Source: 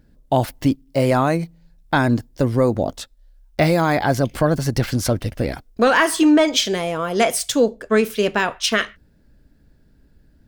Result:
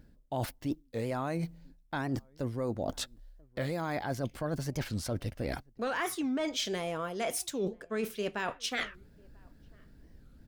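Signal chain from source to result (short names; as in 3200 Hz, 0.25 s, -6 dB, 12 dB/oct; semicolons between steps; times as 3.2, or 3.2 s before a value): reverse; compressor 5:1, threshold -31 dBFS, peak gain reduction 18 dB; reverse; outdoor echo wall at 170 m, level -29 dB; record warp 45 rpm, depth 250 cents; gain -1.5 dB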